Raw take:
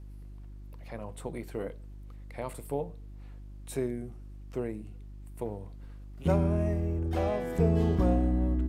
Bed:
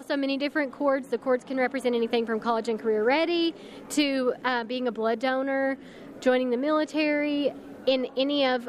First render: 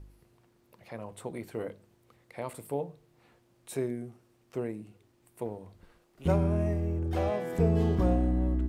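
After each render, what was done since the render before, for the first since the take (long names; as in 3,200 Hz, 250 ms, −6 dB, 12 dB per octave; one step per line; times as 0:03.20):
hum removal 50 Hz, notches 6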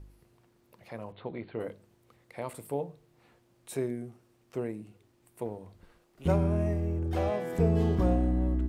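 0:01.12–0:01.60: Butterworth low-pass 4,200 Hz 72 dB per octave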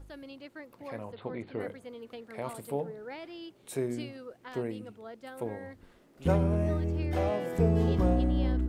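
mix in bed −19.5 dB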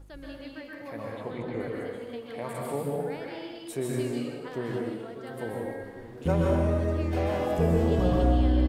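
slap from a distant wall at 240 metres, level −13 dB
dense smooth reverb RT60 1.2 s, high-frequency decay 0.9×, pre-delay 115 ms, DRR −2.5 dB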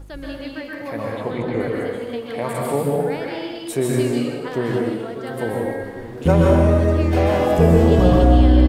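level +10.5 dB
brickwall limiter −3 dBFS, peak gain reduction 2 dB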